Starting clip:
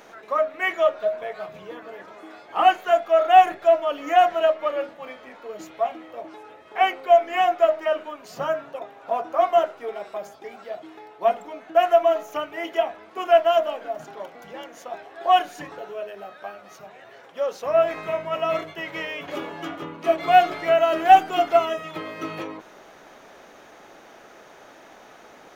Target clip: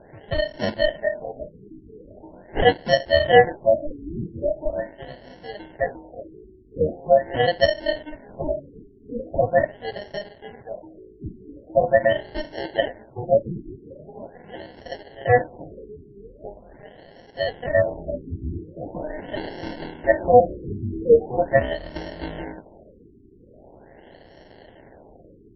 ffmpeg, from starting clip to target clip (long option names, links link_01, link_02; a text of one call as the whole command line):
ffmpeg -i in.wav -filter_complex "[0:a]asplit=3[link_01][link_02][link_03];[link_01]afade=type=out:start_time=18.81:duration=0.02[link_04];[link_02]adynamicequalizer=threshold=0.0251:dfrequency=520:dqfactor=1.5:tfrequency=520:tqfactor=1.5:attack=5:release=100:ratio=0.375:range=2.5:mode=boostabove:tftype=bell,afade=type=in:start_time=18.81:duration=0.02,afade=type=out:start_time=20.4:duration=0.02[link_05];[link_03]afade=type=in:start_time=20.4:duration=0.02[link_06];[link_04][link_05][link_06]amix=inputs=3:normalize=0,acrusher=samples=36:mix=1:aa=0.000001,afftfilt=real='re*lt(b*sr/1024,410*pow(5800/410,0.5+0.5*sin(2*PI*0.42*pts/sr)))':imag='im*lt(b*sr/1024,410*pow(5800/410,0.5+0.5*sin(2*PI*0.42*pts/sr)))':win_size=1024:overlap=0.75" out.wav